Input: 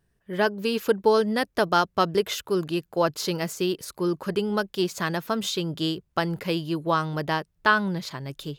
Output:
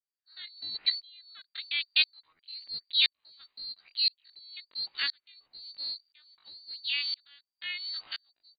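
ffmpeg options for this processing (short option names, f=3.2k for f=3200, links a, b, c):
-af "lowpass=f=2.3k:t=q:w=0.5098,lowpass=f=2.3k:t=q:w=0.6013,lowpass=f=2.3k:t=q:w=0.9,lowpass=f=2.3k:t=q:w=2.563,afreqshift=-2700,asetrate=78577,aresample=44100,atempo=0.561231,aeval=exprs='val(0)*pow(10,-38*if(lt(mod(-0.98*n/s,1),2*abs(-0.98)/1000),1-mod(-0.98*n/s,1)/(2*abs(-0.98)/1000),(mod(-0.98*n/s,1)-2*abs(-0.98)/1000)/(1-2*abs(-0.98)/1000))/20)':c=same"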